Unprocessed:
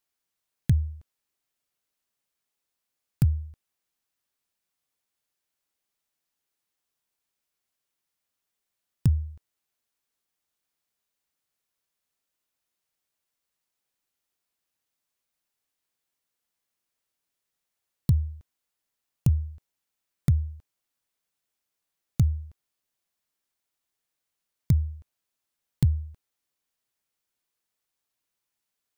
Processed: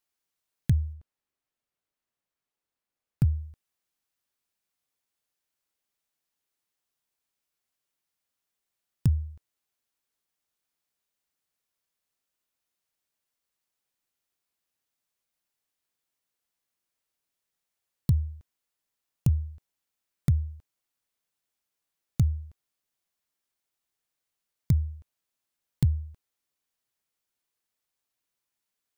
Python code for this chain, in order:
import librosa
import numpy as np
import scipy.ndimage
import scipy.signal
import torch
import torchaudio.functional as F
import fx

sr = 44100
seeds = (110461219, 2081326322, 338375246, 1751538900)

y = fx.high_shelf(x, sr, hz=2900.0, db=-9.0, at=(0.93, 3.25))
y = y * librosa.db_to_amplitude(-1.5)